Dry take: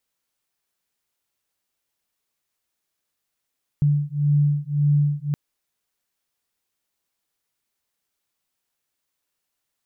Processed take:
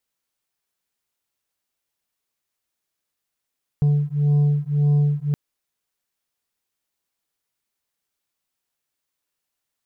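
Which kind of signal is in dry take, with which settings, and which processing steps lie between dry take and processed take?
beating tones 145 Hz, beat 1.8 Hz, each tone -20 dBFS 1.52 s
sample leveller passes 1

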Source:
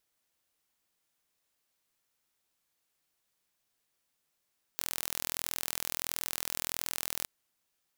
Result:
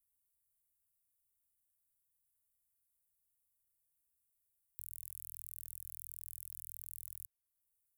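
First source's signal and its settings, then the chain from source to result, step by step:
pulse train 41.5/s, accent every 0, -6.5 dBFS 2.47 s
inverse Chebyshev band-stop 270–4100 Hz, stop band 50 dB; compressor 1.5:1, threshold -58 dBFS

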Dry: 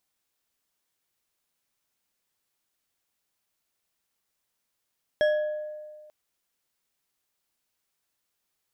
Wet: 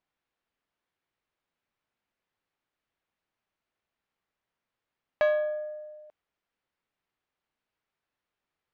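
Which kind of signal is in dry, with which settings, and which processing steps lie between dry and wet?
glass hit bar, lowest mode 607 Hz, decay 1.75 s, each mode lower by 8.5 dB, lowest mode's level -18 dB
LPF 2500 Hz 12 dB/oct; Doppler distortion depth 0.34 ms

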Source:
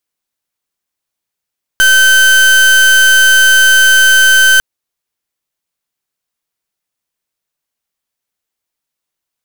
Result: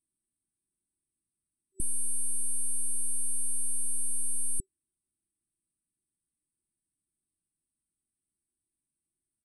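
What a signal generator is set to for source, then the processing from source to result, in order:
pulse 1540 Hz, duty 36% -6.5 dBFS 2.80 s
FFT band-reject 380–7900 Hz; limiter -15.5 dBFS; downsampling 22050 Hz

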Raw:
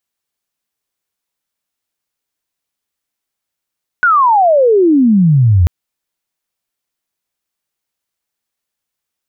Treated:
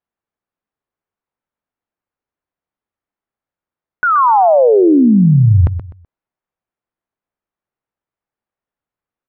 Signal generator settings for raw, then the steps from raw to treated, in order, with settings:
chirp logarithmic 1500 Hz -> 81 Hz -6.5 dBFS -> -5.5 dBFS 1.64 s
LPF 1400 Hz 12 dB/oct; on a send: feedback echo 0.126 s, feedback 27%, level -11 dB

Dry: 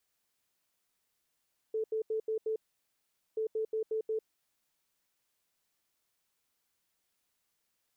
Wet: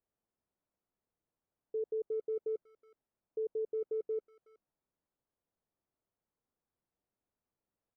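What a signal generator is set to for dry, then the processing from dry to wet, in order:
beep pattern sine 439 Hz, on 0.10 s, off 0.08 s, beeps 5, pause 0.81 s, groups 2, -29.5 dBFS
Bessel low-pass 640 Hz, order 2; speakerphone echo 0.37 s, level -22 dB

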